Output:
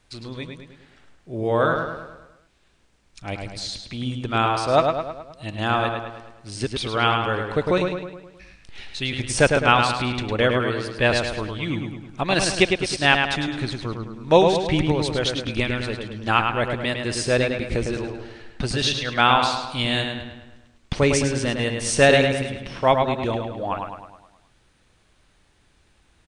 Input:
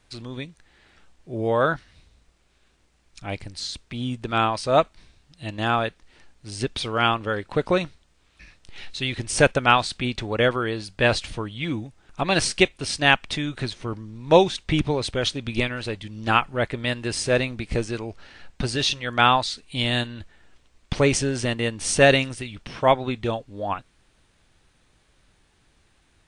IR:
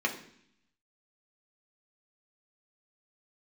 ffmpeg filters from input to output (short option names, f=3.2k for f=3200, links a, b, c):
-filter_complex "[0:a]asplit=2[a][b];[b]adelay=105,lowpass=f=4.5k:p=1,volume=-4.5dB,asplit=2[c][d];[d]adelay=105,lowpass=f=4.5k:p=1,volume=0.53,asplit=2[e][f];[f]adelay=105,lowpass=f=4.5k:p=1,volume=0.53,asplit=2[g][h];[h]adelay=105,lowpass=f=4.5k:p=1,volume=0.53,asplit=2[i][j];[j]adelay=105,lowpass=f=4.5k:p=1,volume=0.53,asplit=2[k][l];[l]adelay=105,lowpass=f=4.5k:p=1,volume=0.53,asplit=2[m][n];[n]adelay=105,lowpass=f=4.5k:p=1,volume=0.53[o];[a][c][e][g][i][k][m][o]amix=inputs=8:normalize=0"